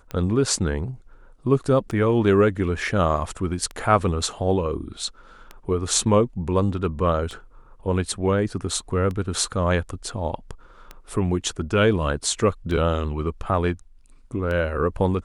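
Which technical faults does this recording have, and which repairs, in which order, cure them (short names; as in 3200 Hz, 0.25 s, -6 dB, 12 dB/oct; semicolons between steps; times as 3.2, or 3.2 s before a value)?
tick 33 1/3 rpm -19 dBFS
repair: de-click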